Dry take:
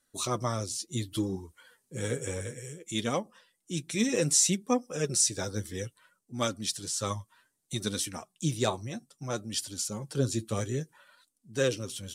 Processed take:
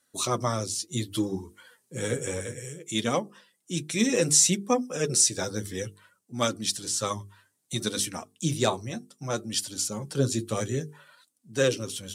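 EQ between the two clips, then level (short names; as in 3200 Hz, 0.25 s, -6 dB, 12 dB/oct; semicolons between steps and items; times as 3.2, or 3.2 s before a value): HPF 95 Hz; notches 50/100/150/200/250/300/350/400/450 Hz; +4.0 dB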